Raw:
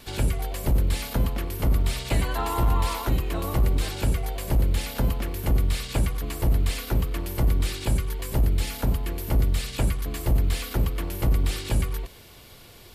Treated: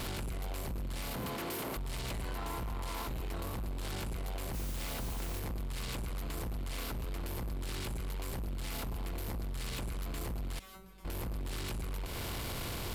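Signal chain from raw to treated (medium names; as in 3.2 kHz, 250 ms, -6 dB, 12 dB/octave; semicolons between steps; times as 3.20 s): spectral levelling over time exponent 0.6; 1.15–1.76 s: high-pass 140 Hz -> 340 Hz 12 dB/octave; compression, threshold -30 dBFS, peak gain reduction 13.5 dB; peak limiter -26.5 dBFS, peak gain reduction 7 dB; saturation -37 dBFS, distortion -10 dB; 4.53–5.39 s: modulation noise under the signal 11 dB; 10.59–11.05 s: feedback comb 190 Hz, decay 0.28 s, harmonics all, mix 100%; trim +2.5 dB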